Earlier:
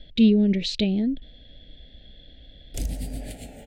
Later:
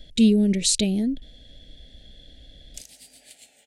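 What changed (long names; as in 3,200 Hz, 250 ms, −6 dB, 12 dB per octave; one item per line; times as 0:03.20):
speech: remove low-pass filter 4,000 Hz 24 dB per octave
background: add resonant band-pass 5,900 Hz, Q 0.78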